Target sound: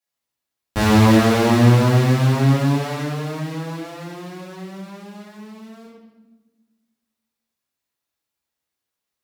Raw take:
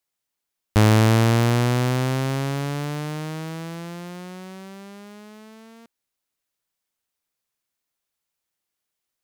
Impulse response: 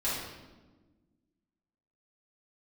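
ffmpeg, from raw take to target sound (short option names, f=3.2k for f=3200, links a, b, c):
-filter_complex "[0:a]asplit=2[a][b];[b]acrusher=bits=5:dc=4:mix=0:aa=0.000001,volume=-8dB[c];[a][c]amix=inputs=2:normalize=0,highpass=52[d];[1:a]atrim=start_sample=2205[e];[d][e]afir=irnorm=-1:irlink=0,volume=-6.5dB"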